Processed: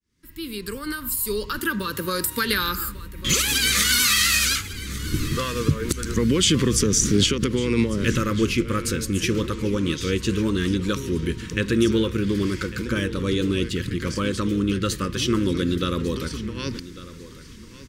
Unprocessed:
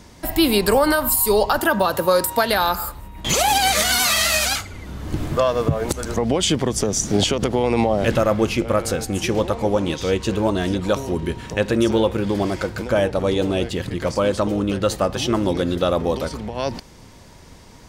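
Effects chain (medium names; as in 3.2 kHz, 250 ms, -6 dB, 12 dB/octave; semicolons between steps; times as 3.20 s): fade-in on the opening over 2.60 s; Butterworth band-stop 720 Hz, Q 0.83; on a send: feedback delay 1148 ms, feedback 22%, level -16.5 dB; 6.16–7.26 s: on the sum: level flattener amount 50%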